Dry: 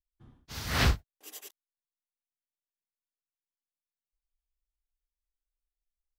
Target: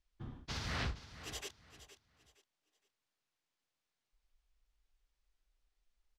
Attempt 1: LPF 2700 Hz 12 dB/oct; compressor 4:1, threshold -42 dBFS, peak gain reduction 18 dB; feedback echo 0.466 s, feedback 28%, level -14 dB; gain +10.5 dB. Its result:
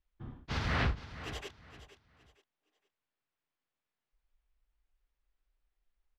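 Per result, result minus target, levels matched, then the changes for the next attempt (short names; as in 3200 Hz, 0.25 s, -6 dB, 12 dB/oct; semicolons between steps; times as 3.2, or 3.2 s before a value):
compressor: peak gain reduction -7.5 dB; 4000 Hz band -5.5 dB
change: compressor 4:1, threshold -52 dBFS, peak gain reduction 25.5 dB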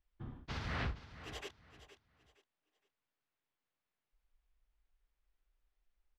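4000 Hz band -3.5 dB
change: LPF 5600 Hz 12 dB/oct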